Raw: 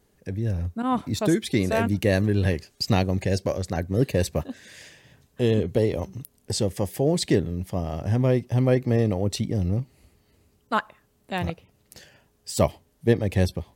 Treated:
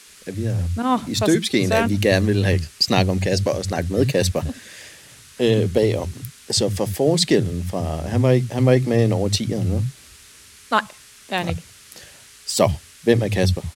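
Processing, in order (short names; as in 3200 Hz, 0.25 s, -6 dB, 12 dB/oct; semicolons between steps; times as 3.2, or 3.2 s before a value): dynamic EQ 4400 Hz, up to +5 dB, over -44 dBFS, Q 0.8; band noise 1200–11000 Hz -52 dBFS; bands offset in time highs, lows 70 ms, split 160 Hz; gain +5 dB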